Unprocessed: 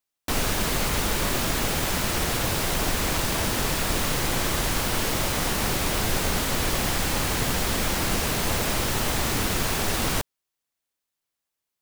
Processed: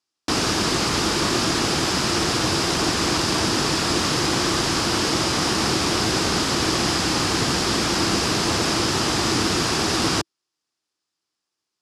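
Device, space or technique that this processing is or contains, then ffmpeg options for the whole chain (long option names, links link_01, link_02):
car door speaker: -af "highpass=94,equalizer=frequency=330:width_type=q:width=4:gain=8,equalizer=frequency=570:width_type=q:width=4:gain=-4,equalizer=frequency=1200:width_type=q:width=4:gain=3,equalizer=frequency=2100:width_type=q:width=4:gain=-3,equalizer=frequency=5000:width_type=q:width=4:gain=8,equalizer=frequency=8800:width_type=q:width=4:gain=-4,lowpass=frequency=9300:width=0.5412,lowpass=frequency=9300:width=1.3066,volume=4dB"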